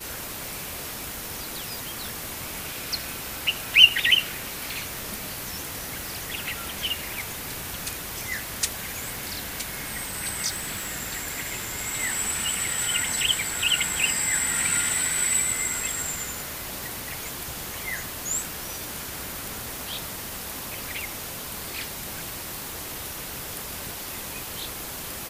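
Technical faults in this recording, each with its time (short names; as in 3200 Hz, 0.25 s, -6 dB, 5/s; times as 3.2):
crackle 13/s -34 dBFS
4.7 pop
10.48–10.93 clipped -26 dBFS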